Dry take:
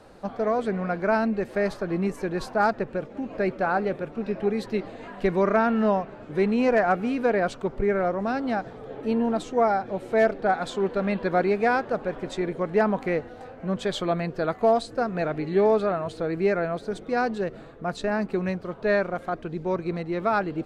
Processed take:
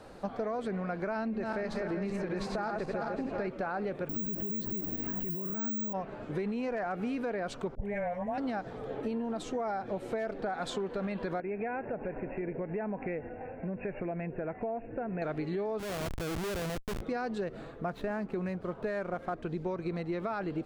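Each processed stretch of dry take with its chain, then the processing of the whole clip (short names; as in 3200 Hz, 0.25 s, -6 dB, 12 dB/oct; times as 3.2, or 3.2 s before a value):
1.15–3.49 regenerating reverse delay 0.19 s, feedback 62%, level -5.5 dB + LPF 7400 Hz
4.09–5.93 resonant low shelf 400 Hz +11 dB, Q 1.5 + careless resampling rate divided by 2×, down none, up zero stuff
7.75–8.38 fixed phaser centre 1300 Hz, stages 6 + dispersion highs, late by 78 ms, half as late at 890 Hz
11.4–15.22 brick-wall FIR low-pass 2800 Hz + bell 1200 Hz -15 dB 0.3 oct + compressor 3:1, threshold -32 dBFS
15.79–17.01 high shelf 2700 Hz -6 dB + compressor 5:1, threshold -29 dBFS + Schmitt trigger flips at -34.5 dBFS
17.88–19.43 median filter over 9 samples + high shelf 6400 Hz -9 dB
whole clip: limiter -19.5 dBFS; compressor, threshold -31 dBFS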